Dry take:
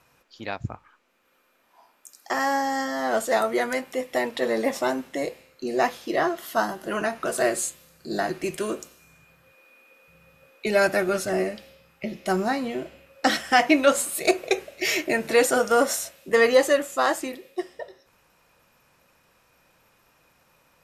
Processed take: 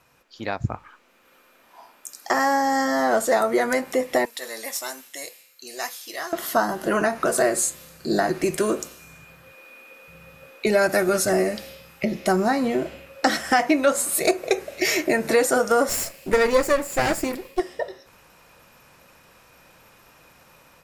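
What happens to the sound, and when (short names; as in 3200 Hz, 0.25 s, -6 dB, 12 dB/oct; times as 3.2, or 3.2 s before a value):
4.25–6.33 pre-emphasis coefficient 0.97
10.89–12.05 high shelf 4200 Hz +6.5 dB
15.89–17.6 minimum comb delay 0.4 ms
whole clip: compressor 2.5:1, threshold -28 dBFS; dynamic EQ 3000 Hz, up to -7 dB, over -51 dBFS, Q 1.9; AGC gain up to 8 dB; gain +1 dB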